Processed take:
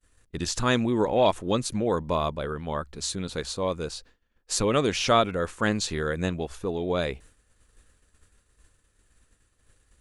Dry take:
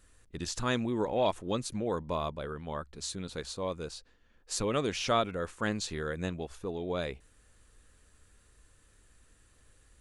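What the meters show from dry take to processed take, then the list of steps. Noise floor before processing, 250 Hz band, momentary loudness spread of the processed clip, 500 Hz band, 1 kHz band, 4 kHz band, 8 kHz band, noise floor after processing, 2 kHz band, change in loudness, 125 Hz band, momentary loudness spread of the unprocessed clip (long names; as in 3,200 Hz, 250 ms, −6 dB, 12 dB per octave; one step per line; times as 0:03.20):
−64 dBFS, +7.0 dB, 11 LU, +7.0 dB, +7.0 dB, +7.0 dB, +7.0 dB, −69 dBFS, +7.0 dB, +7.0 dB, +7.0 dB, 11 LU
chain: downward expander −53 dBFS
level +7 dB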